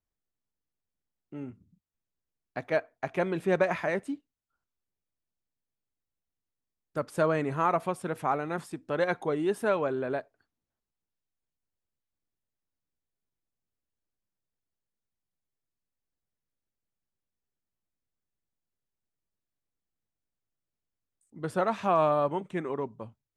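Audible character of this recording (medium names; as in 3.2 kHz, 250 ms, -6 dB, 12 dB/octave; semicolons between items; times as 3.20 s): noise floor -88 dBFS; spectral tilt -2.5 dB/octave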